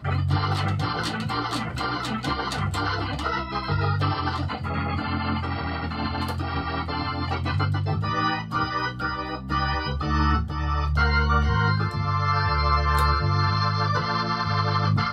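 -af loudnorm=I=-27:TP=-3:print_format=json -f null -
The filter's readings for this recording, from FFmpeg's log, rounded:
"input_i" : "-24.5",
"input_tp" : "-8.6",
"input_lra" : "4.2",
"input_thresh" : "-34.5",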